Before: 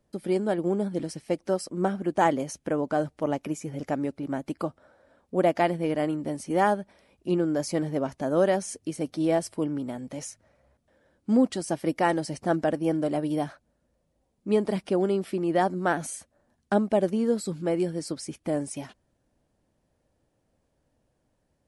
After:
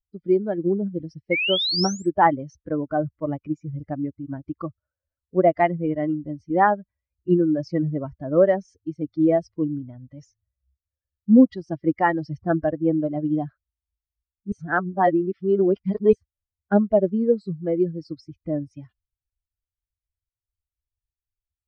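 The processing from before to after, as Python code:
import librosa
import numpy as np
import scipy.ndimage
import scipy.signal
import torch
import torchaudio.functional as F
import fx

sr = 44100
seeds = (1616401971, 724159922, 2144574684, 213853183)

y = fx.spec_paint(x, sr, seeds[0], shape='rise', start_s=1.31, length_s=0.78, low_hz=2100.0, high_hz=8400.0, level_db=-31.0)
y = fx.edit(y, sr, fx.reverse_span(start_s=14.52, length_s=1.61), tone=tone)
y = fx.bin_expand(y, sr, power=2.0)
y = scipy.signal.sosfilt(scipy.signal.butter(8, 5400.0, 'lowpass', fs=sr, output='sos'), y)
y = fx.low_shelf(y, sr, hz=150.0, db=5.0)
y = F.gain(torch.from_numpy(y), 8.5).numpy()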